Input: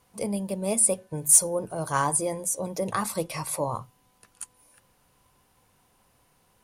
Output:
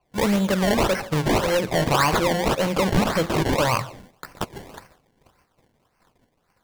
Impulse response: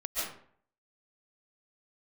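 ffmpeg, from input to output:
-filter_complex "[0:a]acontrast=82,agate=range=-22dB:threshold=-54dB:ratio=16:detection=peak,acompressor=threshold=-27dB:ratio=2.5,asplit=2[a][b];[1:a]atrim=start_sample=2205,highshelf=f=4.8k:g=11.5[c];[b][c]afir=irnorm=-1:irlink=0,volume=-24.5dB[d];[a][d]amix=inputs=2:normalize=0,asoftclip=type=hard:threshold=-24.5dB,equalizer=f=1.6k:t=o:w=1.1:g=7,acrusher=samples=24:mix=1:aa=0.000001:lfo=1:lforange=24:lforate=1.8,adynamicequalizer=threshold=0.00316:dfrequency=7400:dqfactor=0.7:tfrequency=7400:tqfactor=0.7:attack=5:release=100:ratio=0.375:range=2.5:mode=cutabove:tftype=highshelf,volume=7.5dB"

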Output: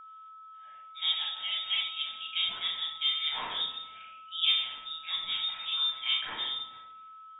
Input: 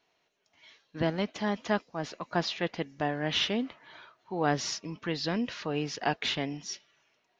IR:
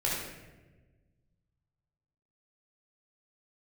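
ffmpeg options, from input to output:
-filter_complex "[0:a]acrossover=split=200 2200:gain=0.0891 1 0.2[a][b][c];[a][b][c]amix=inputs=3:normalize=0,lowpass=f=3.3k:t=q:w=0.5098,lowpass=f=3.3k:t=q:w=0.6013,lowpass=f=3.3k:t=q:w=0.9,lowpass=f=3.3k:t=q:w=2.563,afreqshift=-3900[d];[1:a]atrim=start_sample=2205,asetrate=70560,aresample=44100[e];[d][e]afir=irnorm=-1:irlink=0,aeval=exprs='val(0)+0.00708*sin(2*PI*1300*n/s)':c=same,volume=-3.5dB"

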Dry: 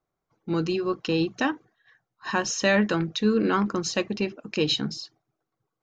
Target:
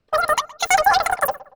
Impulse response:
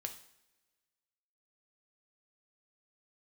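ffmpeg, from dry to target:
-filter_complex "[0:a]aemphasis=mode=reproduction:type=bsi,asetrate=164934,aresample=44100,asplit=2[a][b];[b]adelay=117,lowpass=f=1.5k:p=1,volume=-17dB,asplit=2[c][d];[d]adelay=117,lowpass=f=1.5k:p=1,volume=0.37,asplit=2[e][f];[f]adelay=117,lowpass=f=1.5k:p=1,volume=0.37[g];[c][e][g]amix=inputs=3:normalize=0[h];[a][h]amix=inputs=2:normalize=0,volume=3.5dB"

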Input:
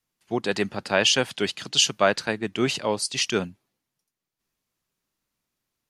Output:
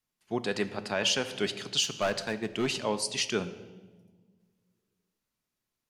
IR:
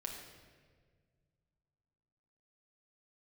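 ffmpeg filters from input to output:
-filter_complex "[0:a]asplit=3[a][b][c];[a]afade=t=out:st=1.83:d=0.02[d];[b]volume=18dB,asoftclip=hard,volume=-18dB,afade=t=in:st=1.83:d=0.02,afade=t=out:st=2.68:d=0.02[e];[c]afade=t=in:st=2.68:d=0.02[f];[d][e][f]amix=inputs=3:normalize=0,asplit=2[g][h];[1:a]atrim=start_sample=2205,asetrate=57330,aresample=44100[i];[h][i]afir=irnorm=-1:irlink=0,volume=-2dB[j];[g][j]amix=inputs=2:normalize=0,asoftclip=type=tanh:threshold=-3dB,alimiter=limit=-9dB:level=0:latency=1:release=201,volume=-7.5dB"

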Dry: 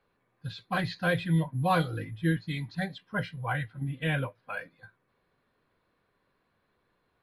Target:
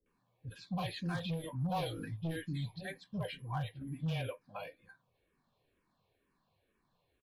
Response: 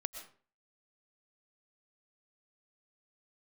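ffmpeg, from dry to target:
-filter_complex "[0:a]equalizer=f=1.4k:w=2.9:g=-10.5,acrossover=split=410[a][b];[b]adelay=60[c];[a][c]amix=inputs=2:normalize=0,asoftclip=type=hard:threshold=-25.5dB,bandreject=f=2k:w=9.6,alimiter=level_in=5.5dB:limit=-24dB:level=0:latency=1:release=13,volume=-5.5dB,asplit=2[d][e];[e]afreqshift=-2.1[f];[d][f]amix=inputs=2:normalize=1,volume=1dB"

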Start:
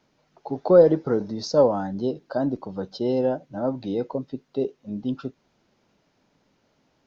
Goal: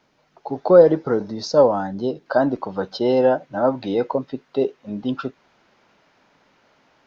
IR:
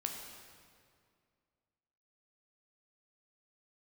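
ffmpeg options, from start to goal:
-af "asetnsamples=n=441:p=0,asendcmd='2.26 equalizer g 13',equalizer=f=1.5k:w=0.35:g=6"

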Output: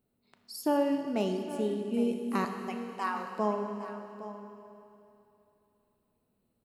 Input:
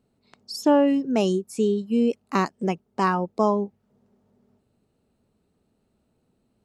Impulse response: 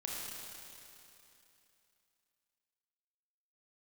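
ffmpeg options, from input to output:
-filter_complex "[0:a]asettb=1/sr,asplit=3[a][b][c];[a]atrim=end=2.454[d];[b]atrim=start=2.45:end=3.37,asetpts=PTS-STARTPTS,afade=t=in:d=0.004:c=qsin,afade=t=out:st=0.916:d=0.004:c=qsin,highpass=770[e];[c]atrim=start=3.366[f];[d][e]acrossfade=d=0.004:c1=hsin:c2=qsin[g];[g][f]acrossfade=d=0.004:c1=qsin:c2=hsin,asplit=2[h][i];[1:a]atrim=start_sample=2205[j];[i][j]afir=irnorm=-1:irlink=0,volume=-1.5dB[k];[h][k]amix=inputs=2:normalize=0,flanger=delay=2.5:depth=5.9:regen=88:speed=0.66:shape=triangular,equalizer=f=6.3k:w=0.93:g=-13.5,aecho=1:1:811:0.211,asettb=1/sr,asplit=3[l][m][n];[l]atrim=end=0.774[o];[m]atrim=start=0.77:end=1.94,asetpts=PTS-STARTPTS,afade=t=in:d=0.004:c=qsin,afade=t=out:st=1.166:d=0.004:c=qsin,adynamicsmooth=sensitivity=8:basefreq=5.7k[p];[n]atrim=start=1.936[q];[o][p]acrossfade=d=0.004:c1=hsin:c2=qsin[r];[r][q]acrossfade=d=0.004:c1=qsin:c2=hsin,crystalizer=i=3:c=0,volume=-8.5dB"

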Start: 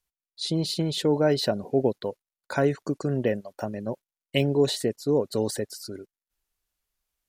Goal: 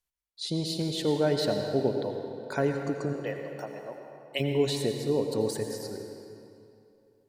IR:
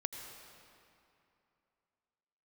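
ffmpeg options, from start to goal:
-filter_complex "[0:a]asplit=3[a][b][c];[a]afade=t=out:st=3.12:d=0.02[d];[b]highpass=590,afade=t=in:st=3.12:d=0.02,afade=t=out:st=4.39:d=0.02[e];[c]afade=t=in:st=4.39:d=0.02[f];[d][e][f]amix=inputs=3:normalize=0[g];[1:a]atrim=start_sample=2205[h];[g][h]afir=irnorm=-1:irlink=0,volume=-3dB"

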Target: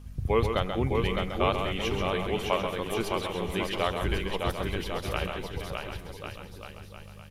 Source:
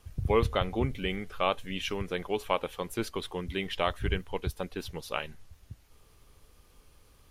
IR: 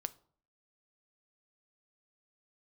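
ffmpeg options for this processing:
-filter_complex "[0:a]aeval=exprs='val(0)+0.00562*(sin(2*PI*50*n/s)+sin(2*PI*2*50*n/s)/2+sin(2*PI*3*50*n/s)/3+sin(2*PI*4*50*n/s)/4+sin(2*PI*5*50*n/s)/5)':c=same,aecho=1:1:610|1098|1488|1801|2051:0.631|0.398|0.251|0.158|0.1,asplit=2[a][b];[1:a]atrim=start_sample=2205,adelay=134[c];[b][c]afir=irnorm=-1:irlink=0,volume=-5.5dB[d];[a][d]amix=inputs=2:normalize=0"

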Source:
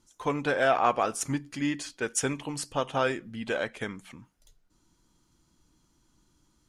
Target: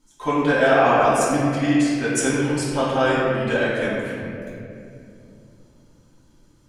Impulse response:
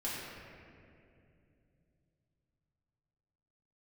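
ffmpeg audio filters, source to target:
-filter_complex "[1:a]atrim=start_sample=2205[a];[0:a][a]afir=irnorm=-1:irlink=0,volume=5dB"

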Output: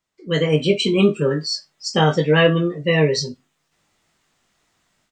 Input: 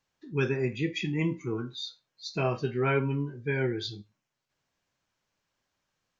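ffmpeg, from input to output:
-filter_complex "[0:a]asplit=2[a][b];[b]adelay=24,volume=-6.5dB[c];[a][c]amix=inputs=2:normalize=0,asetrate=53361,aresample=44100,dynaudnorm=f=240:g=3:m=14.5dB,volume=-1dB"

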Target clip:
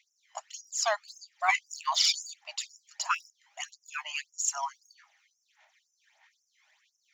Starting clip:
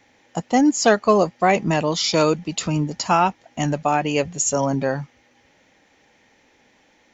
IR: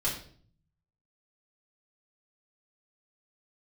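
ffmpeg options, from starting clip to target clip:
-filter_complex "[0:a]asettb=1/sr,asplit=3[a][b][c];[a]atrim=end=1.484[d];[b]atrim=start=1.48:end=2.34,asetpts=PTS-STARTPTS,afade=t=in:d=0.004:c=qsin,afade=t=out:st=0.856:d=0.004:c=qsin,acontrast=23[e];[c]atrim=start=2.336[f];[d][e]acrossfade=d=0.004:c1=hsin:c2=qsin[g];[g][f]acrossfade=d=0.004:c1=qsin:c2=hsin,aphaser=in_gain=1:out_gain=1:delay=1:decay=0.6:speed=1.6:type=sinusoidal,afftfilt=real='re*gte(b*sr/1024,560*pow(5200/560,0.5+0.5*sin(2*PI*1.9*pts/sr)))':imag='im*gte(b*sr/1024,560*pow(5200/560,0.5+0.5*sin(2*PI*1.9*pts/sr)))':win_size=1024:overlap=0.75,volume=-8.5dB"

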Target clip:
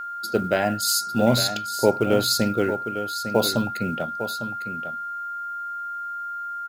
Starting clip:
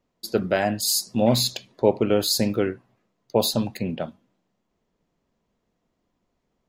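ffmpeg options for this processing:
-af "aeval=exprs='val(0)+0.0316*sin(2*PI*1400*n/s)':c=same,acrusher=bits=8:mode=log:mix=0:aa=0.000001,aecho=1:1:853:0.316"

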